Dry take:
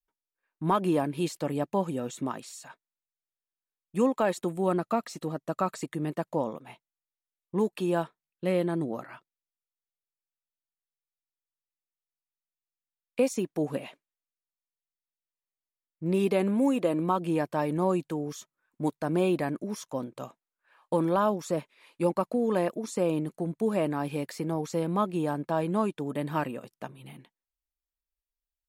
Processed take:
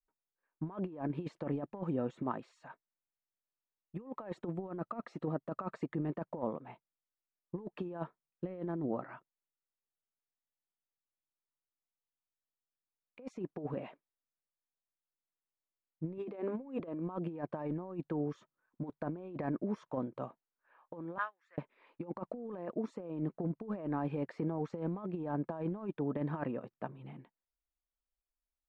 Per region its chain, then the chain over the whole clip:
16.18–16.8 brick-wall FIR high-pass 210 Hz + notches 50/100/150/200/250/300 Hz
21.18–21.58 resonant high-pass 1800 Hz, resonance Q 4.8 + upward expander 2.5:1, over -44 dBFS
whole clip: LPF 1500 Hz 12 dB/oct; negative-ratio compressor -31 dBFS, ratio -0.5; gain -5.5 dB

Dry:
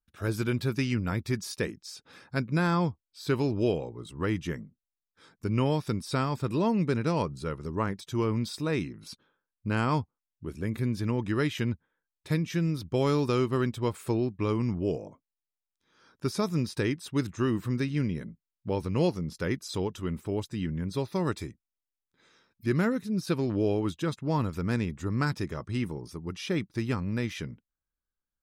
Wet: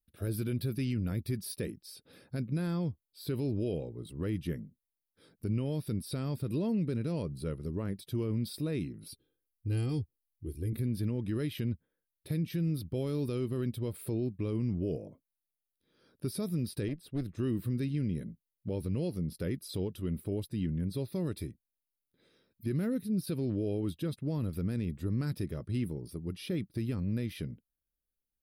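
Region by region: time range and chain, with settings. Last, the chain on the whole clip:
9.1–10.73 bell 1100 Hz -14 dB 2.4 oct + notch 410 Hz, Q 13 + comb 2.5 ms, depth 83%
16.88–17.35 high shelf 5500 Hz -8 dB + tube stage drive 24 dB, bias 0.7
whole clip: EQ curve 580 Hz 0 dB, 940 Hz -14 dB, 4600 Hz -4 dB, 6800 Hz -19 dB, 10000 Hz +5 dB; limiter -22.5 dBFS; dynamic EQ 540 Hz, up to -4 dB, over -42 dBFS, Q 0.73

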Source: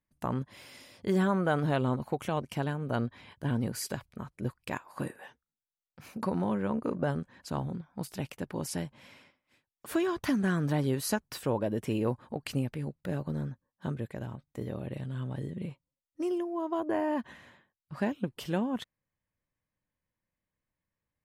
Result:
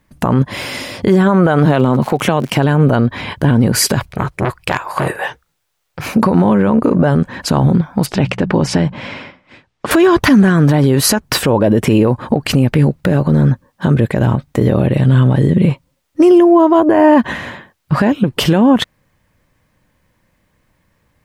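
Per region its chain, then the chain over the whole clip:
1.65–2.56 HPF 120 Hz 24 dB/oct + crackle 89/s -43 dBFS
4.07–6.06 bell 240 Hz -14 dB 0.51 oct + core saturation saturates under 2000 Hz
8.06–9.91 air absorption 110 m + de-hum 60.71 Hz, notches 3
whole clip: high shelf 4400 Hz -7 dB; compressor, threshold -31 dBFS; maximiser +30 dB; gain -1 dB

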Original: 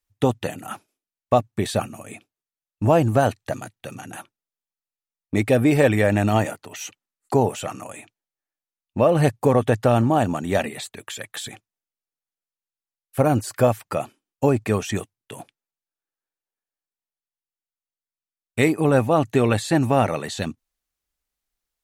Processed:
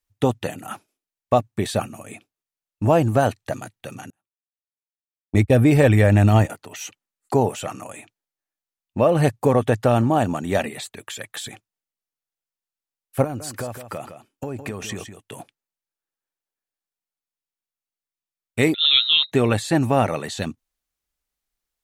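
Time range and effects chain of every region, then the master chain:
4.1–6.5 gate -26 dBFS, range -43 dB + bell 68 Hz +13 dB 1.7 oct
13.24–15.39 compressor, threshold -26 dBFS + echo 0.161 s -9.5 dB
18.74–19.32 inverted band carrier 3900 Hz + mismatched tape noise reduction encoder only
whole clip: dry

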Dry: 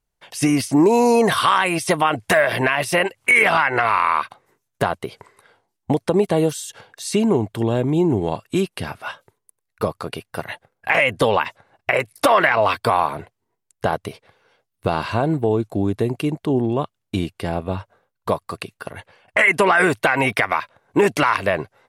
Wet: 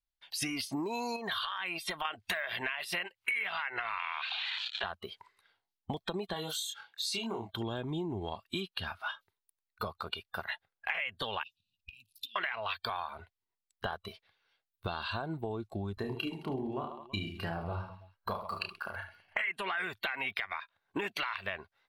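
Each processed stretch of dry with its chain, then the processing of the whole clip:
1.16–2.05 bell 7800 Hz -4.5 dB 1.5 oct + compressor, threshold -19 dBFS
3.99–4.84 switching spikes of -21 dBFS + speaker cabinet 440–3900 Hz, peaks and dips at 480 Hz -10 dB, 730 Hz +5 dB, 1200 Hz -5 dB, 2600 Hz +5 dB + fast leveller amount 50%
6.33–7.53 HPF 88 Hz + low shelf 440 Hz -7.5 dB + doubler 26 ms -3.5 dB
11.43–12.36 compressor, threshold -31 dBFS + brick-wall FIR band-stop 280–2400 Hz
15.94–19.41 notch 3600 Hz, Q 6 + reverse bouncing-ball echo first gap 30 ms, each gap 1.4×, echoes 5
whole clip: spectral noise reduction 13 dB; graphic EQ 125/250/500/1000/4000/8000 Hz -11/-7/-12/-4/+7/-9 dB; compressor 6:1, threshold -33 dBFS

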